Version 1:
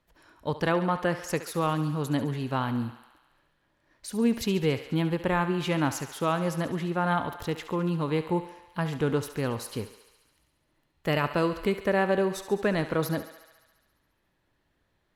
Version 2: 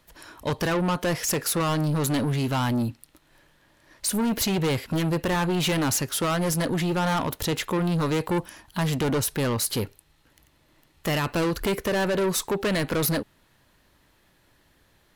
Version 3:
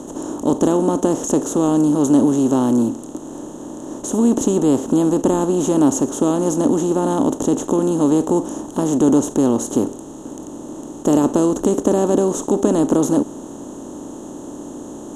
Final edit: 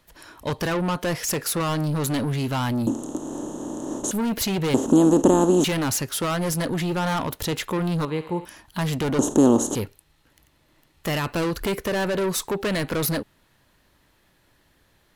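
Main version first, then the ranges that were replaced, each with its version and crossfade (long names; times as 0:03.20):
2
0:02.87–0:04.11: punch in from 3
0:04.74–0:05.64: punch in from 3
0:08.05–0:08.45: punch in from 1
0:09.19–0:09.75: punch in from 3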